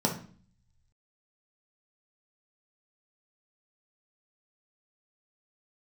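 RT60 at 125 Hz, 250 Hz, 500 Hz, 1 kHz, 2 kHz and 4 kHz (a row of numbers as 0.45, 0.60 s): 1.3, 0.75, 0.45, 0.45, 0.40, 0.40 s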